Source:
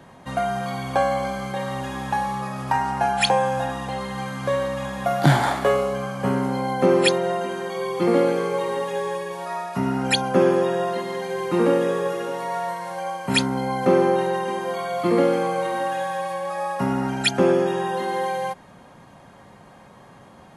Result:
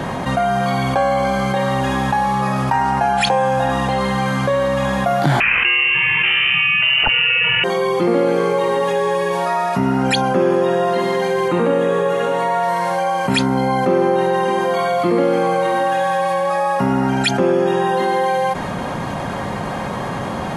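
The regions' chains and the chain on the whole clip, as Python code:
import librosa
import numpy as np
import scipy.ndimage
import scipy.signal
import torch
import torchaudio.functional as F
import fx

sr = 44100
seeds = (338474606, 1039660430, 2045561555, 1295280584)

y = fx.chain(x, sr, fx.highpass(hz=480.0, slope=12),
    fx.freq_invert(carrier_hz=3300),
    fx.env_flatten(amount_pct=70), at=(5.4, 7.64))
y = fx.chain(y, sr, fx.lowpass(hz=10000.0, slope=12),
    fx.peak_eq(hz=5200.0, db=-10.5, octaves=0.28),
    fx.hum_notches(base_hz=50, count=9), at=(11.48, 12.63))
y = fx.high_shelf(y, sr, hz=6500.0, db=-6.0)
y = fx.env_flatten(y, sr, amount_pct=70)
y = F.gain(torch.from_numpy(y), -1.5).numpy()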